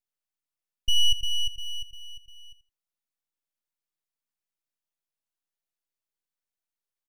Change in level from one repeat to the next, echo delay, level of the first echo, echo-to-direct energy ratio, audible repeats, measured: -15.0 dB, 82 ms, -14.0 dB, -14.0 dB, 2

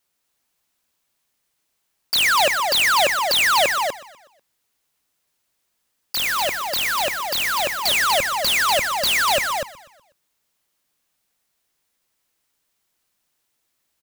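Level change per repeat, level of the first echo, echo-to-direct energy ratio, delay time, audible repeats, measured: -5.0 dB, -18.0 dB, -4.5 dB, 0.123 s, 4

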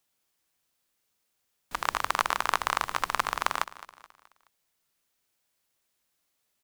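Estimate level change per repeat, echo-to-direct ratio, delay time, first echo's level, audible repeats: -7.0 dB, -16.0 dB, 0.213 s, -17.0 dB, 3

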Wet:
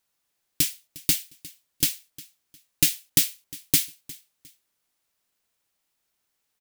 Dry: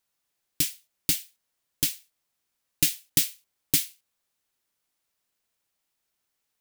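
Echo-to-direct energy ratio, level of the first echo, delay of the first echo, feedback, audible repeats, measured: -20.0 dB, -20.5 dB, 0.356 s, 30%, 2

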